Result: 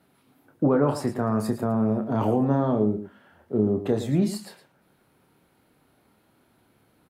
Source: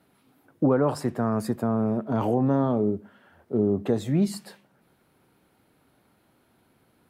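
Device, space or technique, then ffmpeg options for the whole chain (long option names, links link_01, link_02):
slapback doubling: -filter_complex "[0:a]asplit=3[link_01][link_02][link_03];[link_02]adelay=28,volume=-8dB[link_04];[link_03]adelay=112,volume=-11.5dB[link_05];[link_01][link_04][link_05]amix=inputs=3:normalize=0"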